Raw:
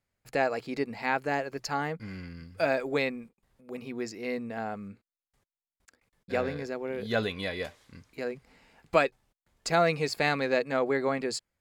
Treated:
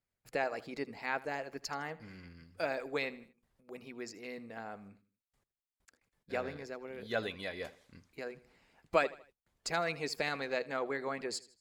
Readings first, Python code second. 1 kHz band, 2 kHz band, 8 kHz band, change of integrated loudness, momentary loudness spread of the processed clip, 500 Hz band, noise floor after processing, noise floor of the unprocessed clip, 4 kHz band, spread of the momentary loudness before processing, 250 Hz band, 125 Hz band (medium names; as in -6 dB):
-7.5 dB, -6.5 dB, -5.0 dB, -7.5 dB, 17 LU, -8.0 dB, under -85 dBFS, under -85 dBFS, -5.5 dB, 14 LU, -10.0 dB, -11.5 dB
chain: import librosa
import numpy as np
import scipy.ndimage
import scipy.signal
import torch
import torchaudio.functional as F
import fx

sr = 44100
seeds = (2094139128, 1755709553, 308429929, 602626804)

y = fx.echo_feedback(x, sr, ms=79, feedback_pct=39, wet_db=-16.5)
y = fx.hpss(y, sr, part='harmonic', gain_db=-8)
y = F.gain(torch.from_numpy(y), -4.5).numpy()